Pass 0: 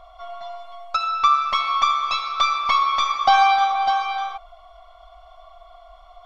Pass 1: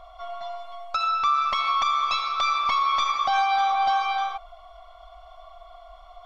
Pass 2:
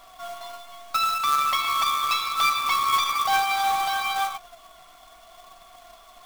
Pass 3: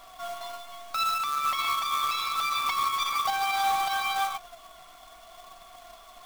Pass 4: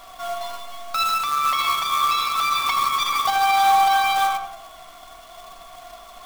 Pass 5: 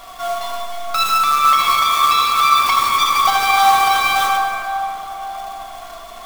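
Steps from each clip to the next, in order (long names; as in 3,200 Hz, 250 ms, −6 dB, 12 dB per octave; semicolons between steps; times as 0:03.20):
brickwall limiter −15 dBFS, peak gain reduction 10 dB
tilt shelving filter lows −7.5 dB, about 690 Hz; flanger 0.71 Hz, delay 5.1 ms, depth 1.7 ms, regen +50%; log-companded quantiser 4 bits
brickwall limiter −20.5 dBFS, peak gain reduction 8.5 dB
feedback echo with a low-pass in the loop 79 ms, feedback 50%, low-pass 1,400 Hz, level −4.5 dB; level +6 dB
dense smooth reverb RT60 3.6 s, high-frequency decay 0.5×, DRR 2.5 dB; level +5 dB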